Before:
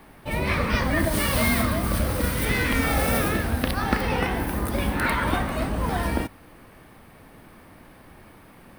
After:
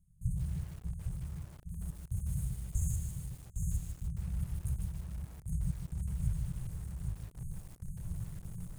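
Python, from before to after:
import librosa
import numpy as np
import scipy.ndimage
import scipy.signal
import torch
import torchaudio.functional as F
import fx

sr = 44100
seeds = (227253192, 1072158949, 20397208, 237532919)

y = fx.hum_notches(x, sr, base_hz=50, count=3)
y = fx.over_compress(y, sr, threshold_db=-35.0, ratio=-1.0)
y = fx.fixed_phaser(y, sr, hz=590.0, stages=8, at=(1.0, 1.9))
y = fx.quant_companded(y, sr, bits=2, at=(2.64, 3.25))
y = fx.step_gate(y, sr, bpm=71, pattern='.xx.x...x', floor_db=-24.0, edge_ms=4.5)
y = fx.brickwall_bandstop(y, sr, low_hz=180.0, high_hz=6300.0)
y = fx.air_absorb(y, sr, metres=71.0)
y = y + 10.0 ** (-5.0 / 20.0) * np.pad(y, (int(810 * sr / 1000.0), 0))[:len(y)]
y = fx.echo_crushed(y, sr, ms=151, feedback_pct=35, bits=9, wet_db=-6.5)
y = y * 10.0 ** (4.0 / 20.0)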